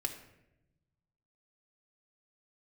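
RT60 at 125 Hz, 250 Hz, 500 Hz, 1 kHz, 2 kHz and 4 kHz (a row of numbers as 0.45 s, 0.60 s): 1.9 s, 1.4 s, 1.0 s, 0.75 s, 0.80 s, 0.55 s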